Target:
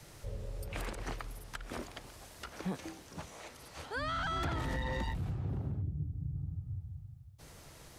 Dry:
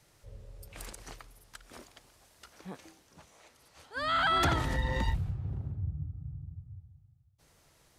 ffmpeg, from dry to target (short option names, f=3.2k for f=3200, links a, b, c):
-filter_complex "[0:a]asplit=2[a][b];[b]acompressor=threshold=-44dB:ratio=6,volume=-3dB[c];[a][c]amix=inputs=2:normalize=0,asoftclip=type=tanh:threshold=-23.5dB,lowshelf=f=480:g=3.5,acrossover=split=190|3300[d][e][f];[d]acompressor=threshold=-43dB:ratio=4[g];[e]acompressor=threshold=-42dB:ratio=4[h];[f]acompressor=threshold=-58dB:ratio=4[i];[g][h][i]amix=inputs=3:normalize=0,asettb=1/sr,asplit=3[j][k][l];[j]atrim=end=5.824[m];[k]atrim=start=5.82:end=6.36,asetpts=PTS-STARTPTS,afade=t=in:d=0.004:c=qsin,afade=t=out:st=0.536:d=0.004:c=qsin,equalizer=f=1.1k:w=1.1:g=-14[n];[l]atrim=start=6.356[o];[m][n]acrossfade=d=0.004:c1=hsin:c2=qsin[p];[p][o]acrossfade=d=0.004:c1=qsin:c2=hsin,volume=4.5dB"